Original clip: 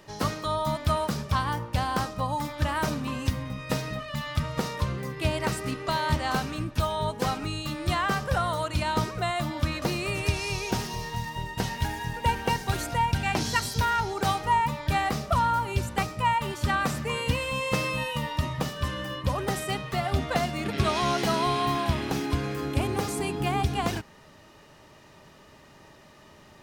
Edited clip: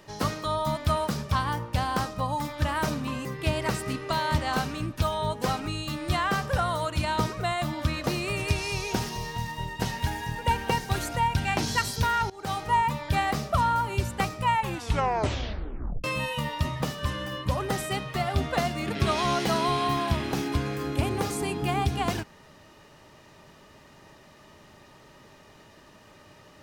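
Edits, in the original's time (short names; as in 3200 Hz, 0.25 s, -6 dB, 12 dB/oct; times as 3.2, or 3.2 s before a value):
3.25–5.03 cut
14.08–14.5 fade in, from -20 dB
16.32 tape stop 1.50 s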